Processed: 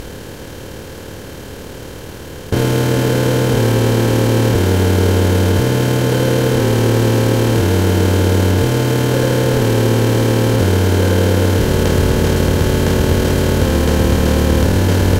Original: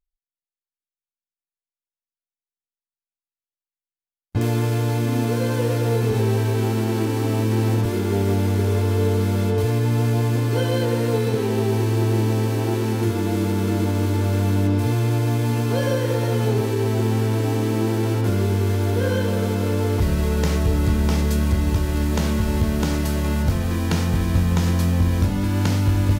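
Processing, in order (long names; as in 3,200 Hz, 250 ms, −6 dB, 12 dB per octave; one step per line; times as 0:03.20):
compressor on every frequency bin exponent 0.2
time stretch by overlap-add 0.58×, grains 53 ms
level +1 dB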